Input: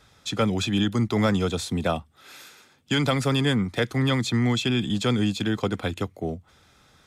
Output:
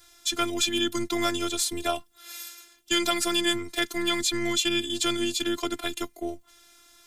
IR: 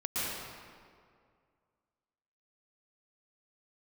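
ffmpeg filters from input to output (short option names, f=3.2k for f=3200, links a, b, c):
-af "afftfilt=real='hypot(re,im)*cos(PI*b)':imag='0':win_size=512:overlap=0.75,crystalizer=i=3.5:c=0"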